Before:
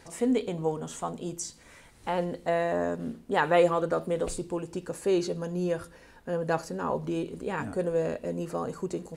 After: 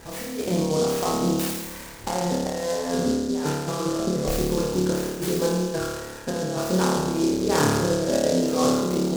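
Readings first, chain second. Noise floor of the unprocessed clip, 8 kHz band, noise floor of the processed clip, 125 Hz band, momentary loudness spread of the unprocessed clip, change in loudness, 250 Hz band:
−55 dBFS, +11.5 dB, −38 dBFS, +8.5 dB, 10 LU, +5.5 dB, +8.0 dB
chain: high-shelf EQ 4,800 Hz −8 dB
compressor whose output falls as the input rises −32 dBFS, ratio −0.5
flutter between parallel walls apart 4.7 metres, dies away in 1.3 s
short delay modulated by noise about 5,200 Hz, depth 0.069 ms
level +4.5 dB

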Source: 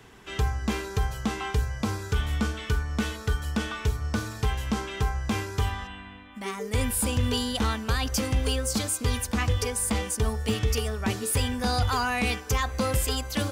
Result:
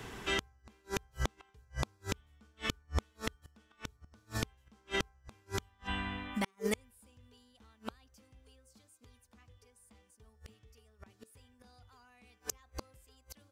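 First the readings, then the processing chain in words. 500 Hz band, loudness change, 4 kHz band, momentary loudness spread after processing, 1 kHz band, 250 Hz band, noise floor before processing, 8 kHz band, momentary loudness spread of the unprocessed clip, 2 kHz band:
−12.0 dB, −12.0 dB, −12.0 dB, 20 LU, −14.5 dB, −14.5 dB, −43 dBFS, −16.5 dB, 5 LU, −10.5 dB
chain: gate with flip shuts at −23 dBFS, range −41 dB
level +5 dB

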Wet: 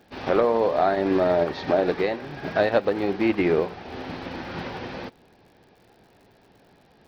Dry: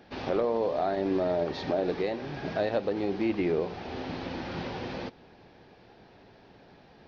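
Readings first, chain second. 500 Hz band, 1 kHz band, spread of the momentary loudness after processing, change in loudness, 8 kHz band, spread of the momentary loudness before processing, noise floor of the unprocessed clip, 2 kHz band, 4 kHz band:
+6.5 dB, +7.5 dB, 14 LU, +6.5 dB, can't be measured, 9 LU, −56 dBFS, +8.5 dB, +4.5 dB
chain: dynamic equaliser 1,500 Hz, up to +6 dB, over −44 dBFS, Q 0.82
surface crackle 90 per second −47 dBFS
expander for the loud parts 1.5 to 1, over −40 dBFS
level +7 dB

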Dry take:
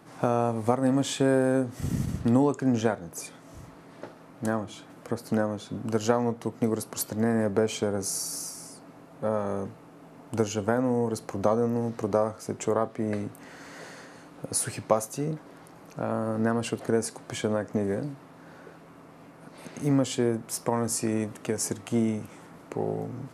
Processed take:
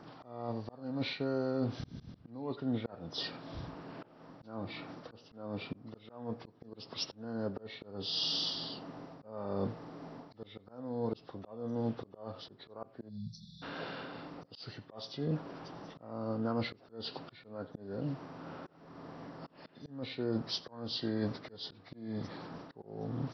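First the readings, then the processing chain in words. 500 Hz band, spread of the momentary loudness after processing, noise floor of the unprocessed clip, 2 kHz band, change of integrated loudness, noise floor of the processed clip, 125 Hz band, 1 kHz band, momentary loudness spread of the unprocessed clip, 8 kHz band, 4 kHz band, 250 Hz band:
−13.5 dB, 15 LU, −50 dBFS, −10.0 dB, −12.0 dB, −61 dBFS, −10.0 dB, −13.5 dB, 19 LU, −25.0 dB, +1.5 dB, −11.5 dB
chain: hearing-aid frequency compression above 1,100 Hz 1.5 to 1
reversed playback
downward compressor 12 to 1, threshold −32 dBFS, peak gain reduction 17 dB
reversed playback
time-frequency box erased 0:13.09–0:13.63, 220–3,400 Hz
single-tap delay 90 ms −22 dB
volume swells 404 ms
level +2.5 dB

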